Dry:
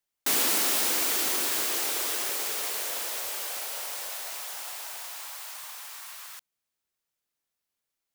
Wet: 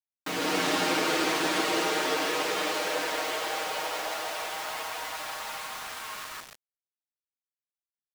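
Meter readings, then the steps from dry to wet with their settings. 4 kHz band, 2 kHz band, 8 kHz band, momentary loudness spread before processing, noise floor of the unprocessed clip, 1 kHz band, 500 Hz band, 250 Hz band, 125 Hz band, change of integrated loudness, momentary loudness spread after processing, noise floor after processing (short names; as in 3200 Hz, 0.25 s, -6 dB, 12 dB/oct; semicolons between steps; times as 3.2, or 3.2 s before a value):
+1.0 dB, +5.5 dB, -7.0 dB, 17 LU, under -85 dBFS, +8.0 dB, +9.5 dB, +10.0 dB, n/a, -2.0 dB, 11 LU, under -85 dBFS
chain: low shelf 320 Hz +2 dB; comb 6.4 ms, depth 97%; feedback echo 1.017 s, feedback 26%, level -15 dB; AGC gain up to 9.5 dB; flange 0.37 Hz, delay 9.7 ms, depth 2.7 ms, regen +51%; tape spacing loss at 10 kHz 24 dB; on a send: tapped delay 52/62/159/336 ms -11/-13.5/-5.5/-15 dB; on the sum: bit-crush 7-bit; gain +2 dB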